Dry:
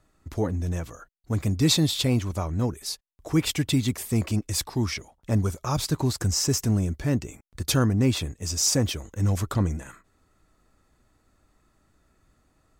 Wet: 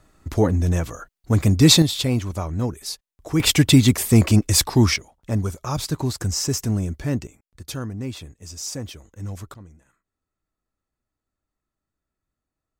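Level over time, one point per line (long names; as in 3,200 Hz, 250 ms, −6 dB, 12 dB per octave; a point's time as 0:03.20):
+8 dB
from 0:01.82 +1.5 dB
from 0:03.40 +10 dB
from 0:04.96 +0.5 dB
from 0:07.27 −8.5 dB
from 0:09.54 −20 dB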